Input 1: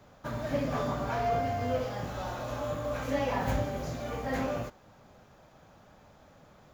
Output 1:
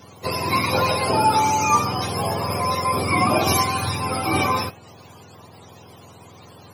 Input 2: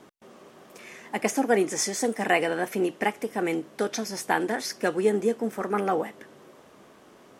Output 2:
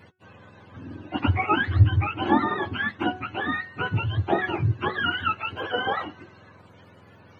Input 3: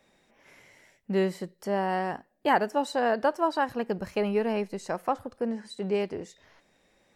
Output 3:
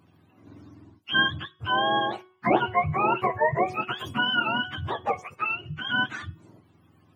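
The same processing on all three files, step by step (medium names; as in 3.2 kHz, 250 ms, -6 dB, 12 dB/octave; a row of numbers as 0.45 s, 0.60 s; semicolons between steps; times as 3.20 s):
spectrum inverted on a logarithmic axis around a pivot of 780 Hz; de-hum 369.4 Hz, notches 9; peak normalisation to -6 dBFS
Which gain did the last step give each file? +14.0 dB, +3.0 dB, +5.0 dB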